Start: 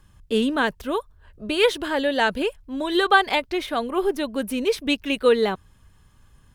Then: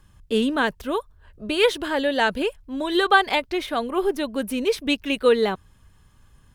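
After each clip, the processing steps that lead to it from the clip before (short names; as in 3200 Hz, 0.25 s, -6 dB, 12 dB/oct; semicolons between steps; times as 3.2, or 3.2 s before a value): nothing audible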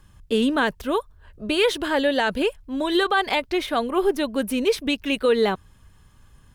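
limiter -13 dBFS, peak gain reduction 9 dB; gain +2 dB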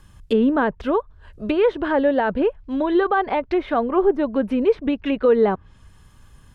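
treble ducked by the level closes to 1200 Hz, closed at -20 dBFS; gain +3.5 dB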